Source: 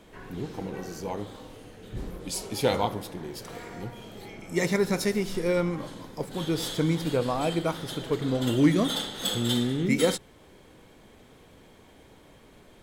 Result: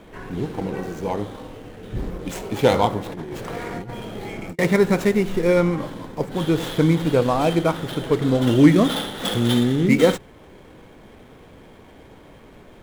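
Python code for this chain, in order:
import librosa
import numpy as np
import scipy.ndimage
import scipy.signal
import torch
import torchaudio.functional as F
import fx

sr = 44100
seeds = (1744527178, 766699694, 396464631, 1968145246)

y = scipy.signal.medfilt(x, 9)
y = fx.over_compress(y, sr, threshold_db=-39.0, ratio=-0.5, at=(3.06, 4.59))
y = y * librosa.db_to_amplitude(8.0)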